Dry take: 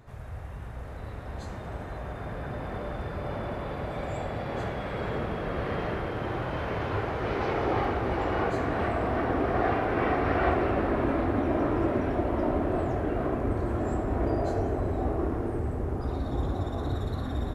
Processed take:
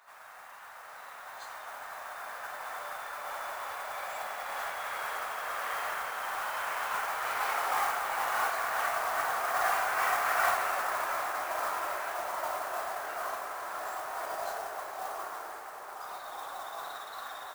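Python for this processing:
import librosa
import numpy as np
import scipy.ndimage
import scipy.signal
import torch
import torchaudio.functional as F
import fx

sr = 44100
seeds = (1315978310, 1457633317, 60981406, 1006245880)

y = scipy.signal.sosfilt(scipy.signal.butter(4, 770.0, 'highpass', fs=sr, output='sos'), x)
y = fx.peak_eq(y, sr, hz=1300.0, db=4.5, octaves=1.0)
y = fx.mod_noise(y, sr, seeds[0], snr_db=12)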